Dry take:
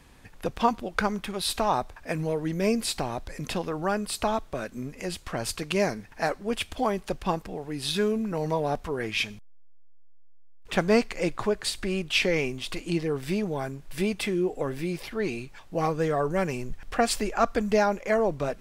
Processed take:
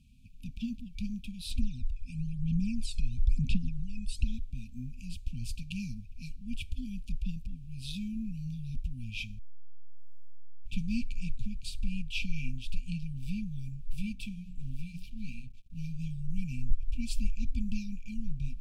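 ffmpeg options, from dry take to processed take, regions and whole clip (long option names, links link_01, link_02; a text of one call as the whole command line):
ffmpeg -i in.wav -filter_complex "[0:a]asettb=1/sr,asplit=3[link_01][link_02][link_03];[link_01]atrim=end=1.514[link_04];[link_02]atrim=start=1.51:end=4.26,asetpts=PTS-STARTPTS,afade=type=in:duration=0.004:curve=qsin,afade=type=out:start_time=2.746:duration=0.004:curve=qsin,acompressor=threshold=-28dB:ratio=2:attack=3.2:release=140:knee=1:detection=peak,aphaser=in_gain=1:out_gain=1:delay=1.2:decay=0.69:speed=1:type=sinusoidal,lowpass=frequency=10000:width=0.5412,lowpass=frequency=10000:width=1.3066[link_05];[link_03]atrim=start=4.256[link_06];[link_04][link_05]acrossfade=duration=0.004:curve1=hsin:curve2=qsin[link_07];[link_07][link_06]acrossfade=duration=0.004:curve1=qsin:curve2=hsin,asettb=1/sr,asplit=3[link_08][link_09][link_10];[link_08]atrim=end=14.004[link_11];[link_09]atrim=start=14:end=16.01,asetpts=PTS-STARTPTS,afade=type=in:duration=0.004:curve=qsin,afade=type=out:start_time=2.006:duration=0.004:curve=qsin,bandreject=frequency=60:width_type=h:width=6,bandreject=frequency=120:width_type=h:width=6,bandreject=frequency=180:width_type=h:width=6,bandreject=frequency=240:width_type=h:width=6,bandreject=frequency=300:width_type=h:width=6,bandreject=frequency=360:width_type=h:width=6,bandreject=frequency=420:width_type=h:width=6,bandreject=frequency=480:width_type=h:width=6,bandreject=frequency=540:width_type=h:width=6,aeval=exprs='sgn(val(0))*max(abs(val(0))-0.00447,0)':channel_layout=same[link_12];[link_10]atrim=start=16.006[link_13];[link_11][link_12]acrossfade=duration=0.004:curve1=hsin:curve2=qsin[link_14];[link_14][link_13]acrossfade=duration=0.004:curve1=qsin:curve2=hsin,asubboost=boost=5.5:cutoff=85,afftfilt=real='re*(1-between(b*sr/4096,260,2300))':imag='im*(1-between(b*sr/4096,260,2300))':win_size=4096:overlap=0.75,highshelf=frequency=2100:gain=-11.5,volume=-4dB" out.wav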